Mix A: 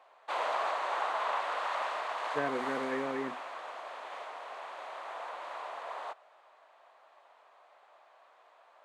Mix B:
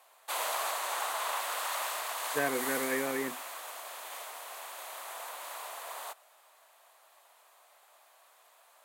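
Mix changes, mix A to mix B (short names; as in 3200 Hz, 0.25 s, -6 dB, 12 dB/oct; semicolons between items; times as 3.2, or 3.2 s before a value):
background -6.0 dB; master: remove tape spacing loss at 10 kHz 33 dB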